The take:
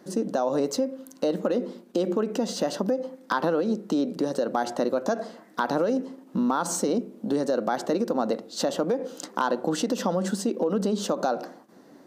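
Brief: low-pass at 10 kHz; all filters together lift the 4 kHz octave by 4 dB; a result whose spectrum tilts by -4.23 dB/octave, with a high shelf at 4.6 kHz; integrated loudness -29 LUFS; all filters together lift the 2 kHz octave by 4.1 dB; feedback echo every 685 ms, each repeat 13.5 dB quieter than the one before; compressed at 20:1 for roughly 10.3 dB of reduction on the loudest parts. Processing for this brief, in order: low-pass 10 kHz; peaking EQ 2 kHz +6 dB; peaking EQ 4 kHz +7.5 dB; treble shelf 4.6 kHz -8 dB; compression 20:1, threshold -30 dBFS; feedback delay 685 ms, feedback 21%, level -13.5 dB; trim +6.5 dB

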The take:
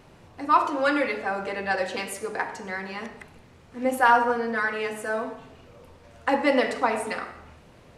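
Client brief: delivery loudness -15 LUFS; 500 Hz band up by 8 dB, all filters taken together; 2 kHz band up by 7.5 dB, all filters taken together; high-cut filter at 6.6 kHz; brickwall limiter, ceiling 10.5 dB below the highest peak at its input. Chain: low-pass 6.6 kHz; peaking EQ 500 Hz +8.5 dB; peaking EQ 2 kHz +9 dB; trim +7.5 dB; peak limiter -4 dBFS

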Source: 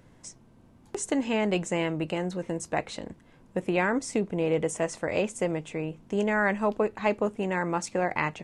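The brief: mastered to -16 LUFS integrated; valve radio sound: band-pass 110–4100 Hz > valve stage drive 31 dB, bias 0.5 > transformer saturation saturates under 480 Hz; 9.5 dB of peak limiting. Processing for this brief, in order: peak limiter -20.5 dBFS; band-pass 110–4100 Hz; valve stage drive 31 dB, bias 0.5; transformer saturation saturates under 480 Hz; trim +25 dB

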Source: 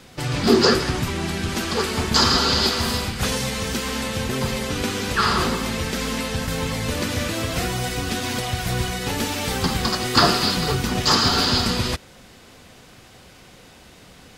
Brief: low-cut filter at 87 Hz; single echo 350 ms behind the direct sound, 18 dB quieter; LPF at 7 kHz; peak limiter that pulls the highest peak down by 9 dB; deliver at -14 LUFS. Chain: high-pass 87 Hz; low-pass 7 kHz; peak limiter -12.5 dBFS; delay 350 ms -18 dB; trim +9.5 dB

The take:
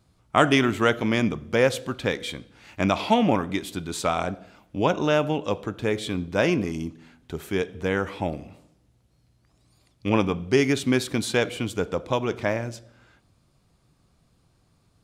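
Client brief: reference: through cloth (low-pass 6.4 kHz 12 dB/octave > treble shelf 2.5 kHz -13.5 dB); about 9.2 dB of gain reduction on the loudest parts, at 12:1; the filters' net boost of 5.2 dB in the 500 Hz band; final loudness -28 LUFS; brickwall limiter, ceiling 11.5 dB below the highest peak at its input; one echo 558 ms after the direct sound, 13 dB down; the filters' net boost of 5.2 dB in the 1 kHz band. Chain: peaking EQ 500 Hz +5 dB; peaking EQ 1 kHz +7.5 dB; compression 12:1, threshold -17 dBFS; peak limiter -16.5 dBFS; low-pass 6.4 kHz 12 dB/octave; treble shelf 2.5 kHz -13.5 dB; delay 558 ms -13 dB; trim +1.5 dB

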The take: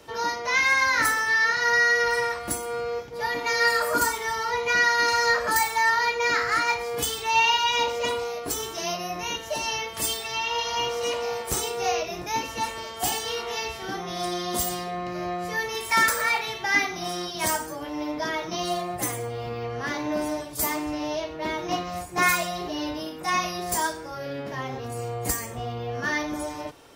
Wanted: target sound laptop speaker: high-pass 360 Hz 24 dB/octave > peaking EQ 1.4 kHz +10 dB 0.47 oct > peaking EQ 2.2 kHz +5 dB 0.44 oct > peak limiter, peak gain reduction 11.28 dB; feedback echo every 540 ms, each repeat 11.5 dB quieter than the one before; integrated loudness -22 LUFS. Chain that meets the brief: high-pass 360 Hz 24 dB/octave; peaking EQ 1.4 kHz +10 dB 0.47 oct; peaking EQ 2.2 kHz +5 dB 0.44 oct; feedback delay 540 ms, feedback 27%, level -11.5 dB; trim +2 dB; peak limiter -12 dBFS

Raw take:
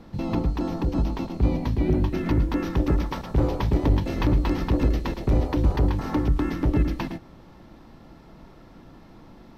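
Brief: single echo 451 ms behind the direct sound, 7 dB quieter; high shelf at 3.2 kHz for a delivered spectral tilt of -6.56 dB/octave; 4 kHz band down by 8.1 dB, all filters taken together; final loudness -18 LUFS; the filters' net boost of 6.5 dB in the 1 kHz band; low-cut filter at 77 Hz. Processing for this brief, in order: high-pass 77 Hz; peaking EQ 1 kHz +8.5 dB; treble shelf 3.2 kHz -4 dB; peaking EQ 4 kHz -8.5 dB; delay 451 ms -7 dB; trim +7 dB

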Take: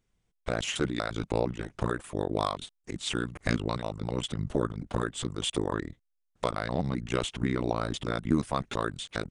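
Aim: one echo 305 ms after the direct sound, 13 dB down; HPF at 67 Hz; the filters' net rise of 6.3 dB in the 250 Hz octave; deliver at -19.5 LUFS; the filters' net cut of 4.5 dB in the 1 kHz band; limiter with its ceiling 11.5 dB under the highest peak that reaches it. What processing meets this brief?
high-pass 67 Hz; peaking EQ 250 Hz +8.5 dB; peaking EQ 1 kHz -6.5 dB; peak limiter -18 dBFS; delay 305 ms -13 dB; trim +12.5 dB

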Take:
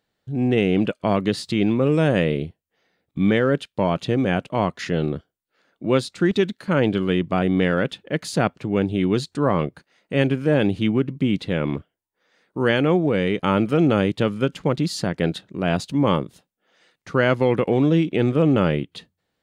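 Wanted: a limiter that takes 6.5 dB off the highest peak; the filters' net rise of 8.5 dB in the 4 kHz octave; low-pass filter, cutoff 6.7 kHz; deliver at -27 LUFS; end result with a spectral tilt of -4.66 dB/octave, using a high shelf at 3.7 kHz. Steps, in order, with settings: low-pass 6.7 kHz; treble shelf 3.7 kHz +6 dB; peaking EQ 4 kHz +8 dB; trim -5 dB; peak limiter -14.5 dBFS

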